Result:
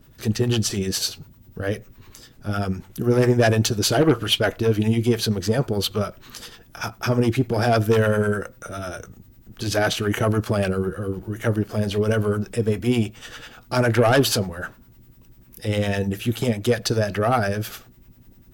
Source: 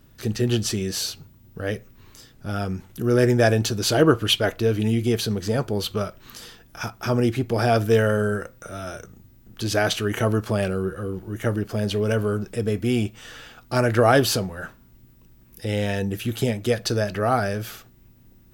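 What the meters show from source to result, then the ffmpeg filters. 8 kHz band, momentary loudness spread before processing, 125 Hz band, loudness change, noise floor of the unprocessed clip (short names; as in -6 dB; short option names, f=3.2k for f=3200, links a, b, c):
+2.0 dB, 16 LU, +1.5 dB, +1.0 dB, -53 dBFS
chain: -filter_complex "[0:a]aeval=exprs='0.708*(cos(1*acos(clip(val(0)/0.708,-1,1)))-cos(1*PI/2))+0.178*(cos(5*acos(clip(val(0)/0.708,-1,1)))-cos(5*PI/2))':c=same,acrossover=split=610[a][b];[a]aeval=exprs='val(0)*(1-0.7/2+0.7/2*cos(2*PI*10*n/s))':c=same[c];[b]aeval=exprs='val(0)*(1-0.7/2-0.7/2*cos(2*PI*10*n/s))':c=same[d];[c][d]amix=inputs=2:normalize=0,volume=-1.5dB"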